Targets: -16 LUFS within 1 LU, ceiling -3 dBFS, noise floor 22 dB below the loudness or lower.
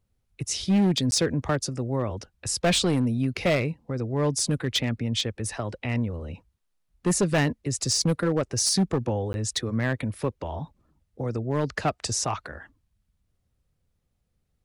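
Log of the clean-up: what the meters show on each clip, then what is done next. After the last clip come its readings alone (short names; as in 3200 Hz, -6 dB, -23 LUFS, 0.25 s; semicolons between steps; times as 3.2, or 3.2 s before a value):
clipped 1.3%; flat tops at -17.0 dBFS; dropouts 2; longest dropout 11 ms; loudness -26.5 LUFS; peak -17.0 dBFS; loudness target -16.0 LUFS
-> clip repair -17 dBFS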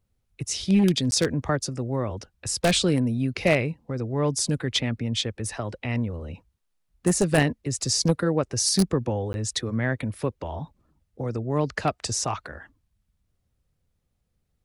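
clipped 0.0%; dropouts 2; longest dropout 11 ms
-> interpolate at 1.11/9.33, 11 ms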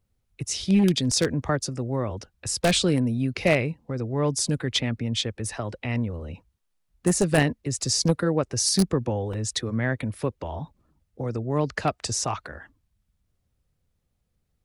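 dropouts 0; loudness -25.5 LUFS; peak -8.0 dBFS; loudness target -16.0 LUFS
-> gain +9.5 dB; limiter -3 dBFS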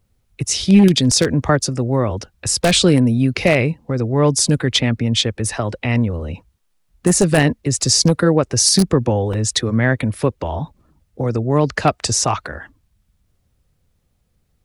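loudness -16.5 LUFS; peak -3.0 dBFS; noise floor -65 dBFS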